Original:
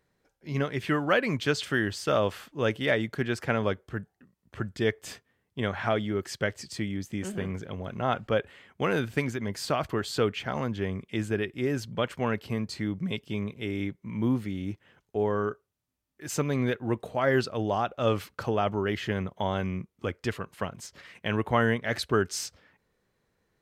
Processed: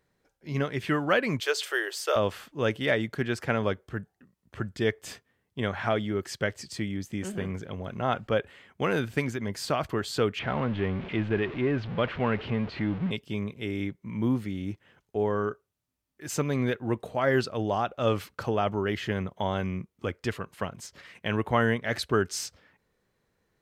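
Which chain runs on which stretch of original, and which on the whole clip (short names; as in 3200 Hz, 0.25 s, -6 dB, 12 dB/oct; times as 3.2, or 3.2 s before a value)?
1.4–2.16 steep high-pass 360 Hz 72 dB/oct + high shelf 10000 Hz +11 dB
10.39–13.11 zero-crossing step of -33 dBFS + LPF 3200 Hz 24 dB/oct
whole clip: dry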